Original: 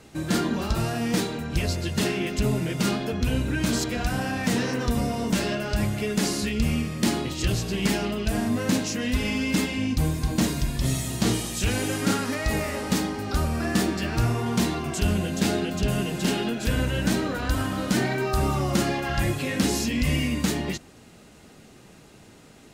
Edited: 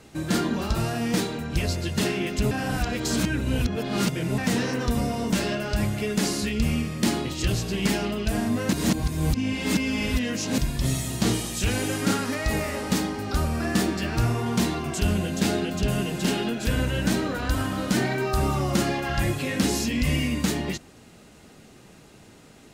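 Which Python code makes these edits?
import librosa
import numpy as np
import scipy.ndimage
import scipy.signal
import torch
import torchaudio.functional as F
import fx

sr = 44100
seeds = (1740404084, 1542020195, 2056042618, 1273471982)

y = fx.edit(x, sr, fx.reverse_span(start_s=2.51, length_s=1.87),
    fx.reverse_span(start_s=8.73, length_s=1.85), tone=tone)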